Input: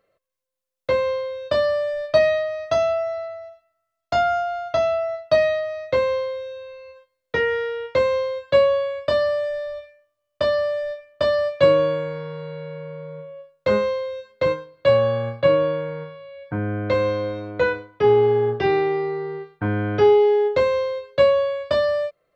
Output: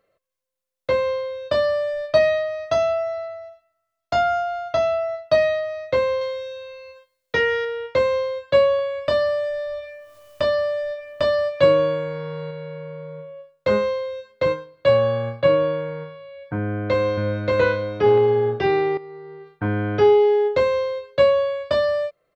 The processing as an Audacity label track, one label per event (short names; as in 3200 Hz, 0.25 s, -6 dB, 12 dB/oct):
6.210000	7.650000	high shelf 2700 Hz +8.5 dB
8.790000	12.510000	upward compressor, threshold -24 dBFS
16.590000	17.590000	echo throw 0.58 s, feedback 15%, level -0.5 dB
18.970000	19.570000	compressor, threshold -36 dBFS